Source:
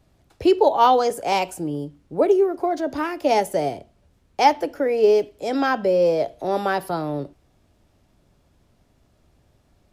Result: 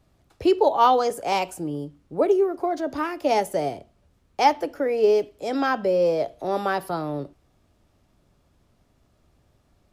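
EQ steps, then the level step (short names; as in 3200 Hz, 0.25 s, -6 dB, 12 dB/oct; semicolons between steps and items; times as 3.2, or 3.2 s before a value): bell 1200 Hz +4 dB 0.23 oct; -2.5 dB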